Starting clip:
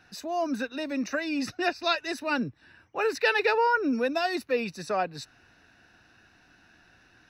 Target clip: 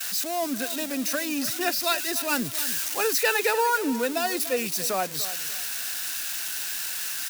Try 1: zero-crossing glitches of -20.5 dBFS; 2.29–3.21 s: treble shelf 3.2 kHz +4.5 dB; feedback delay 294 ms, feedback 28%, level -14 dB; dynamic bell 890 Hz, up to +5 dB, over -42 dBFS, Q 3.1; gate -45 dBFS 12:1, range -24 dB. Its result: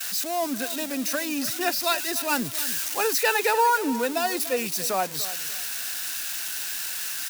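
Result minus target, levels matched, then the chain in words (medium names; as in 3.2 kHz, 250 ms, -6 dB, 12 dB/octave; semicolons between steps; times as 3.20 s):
1 kHz band +2.5 dB
zero-crossing glitches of -20.5 dBFS; 2.29–3.21 s: treble shelf 3.2 kHz +4.5 dB; feedback delay 294 ms, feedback 28%, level -14 dB; gate -45 dBFS 12:1, range -24 dB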